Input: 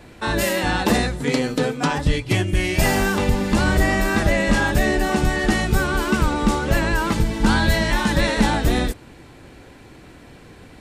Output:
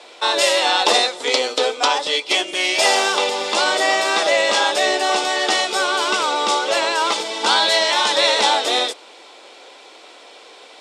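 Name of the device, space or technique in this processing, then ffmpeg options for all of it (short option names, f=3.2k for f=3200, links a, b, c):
phone speaker on a table: -af "highpass=f=480:w=0.5412,highpass=f=480:w=1.3066,equalizer=f=1.7k:t=q:w=4:g=-9,equalizer=f=3.5k:t=q:w=4:g=8,equalizer=f=5.2k:t=q:w=4:g=5,lowpass=f=9k:w=0.5412,lowpass=f=9k:w=1.3066,volume=6.5dB"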